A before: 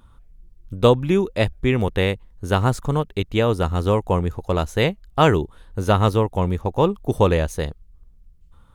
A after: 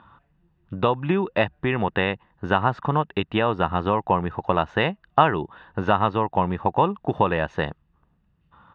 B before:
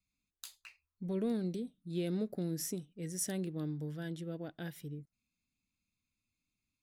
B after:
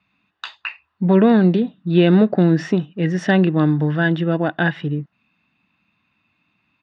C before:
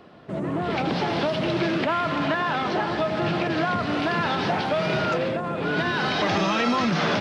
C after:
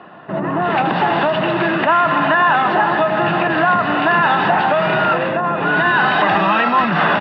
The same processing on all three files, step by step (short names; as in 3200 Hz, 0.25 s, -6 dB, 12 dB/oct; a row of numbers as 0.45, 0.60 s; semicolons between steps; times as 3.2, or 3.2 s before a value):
compressor 6:1, threshold -21 dBFS; speaker cabinet 220–2900 Hz, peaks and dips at 250 Hz -6 dB, 1400 Hz +8 dB, 2100 Hz -4 dB; comb 1.1 ms, depth 50%; normalise peaks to -3 dBFS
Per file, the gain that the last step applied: +7.5, +26.5, +10.5 dB